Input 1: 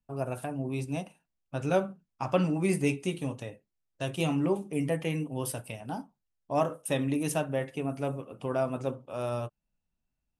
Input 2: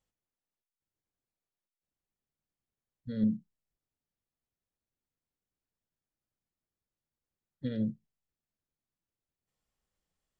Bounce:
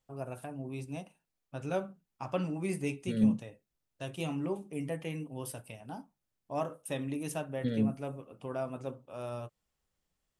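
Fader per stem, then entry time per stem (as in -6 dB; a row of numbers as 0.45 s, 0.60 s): -7.0 dB, +2.5 dB; 0.00 s, 0.00 s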